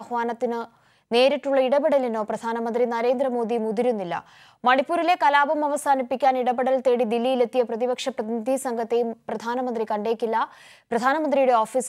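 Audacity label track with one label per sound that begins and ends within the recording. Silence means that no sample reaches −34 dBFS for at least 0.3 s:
1.110000	4.200000	sound
4.640000	10.450000	sound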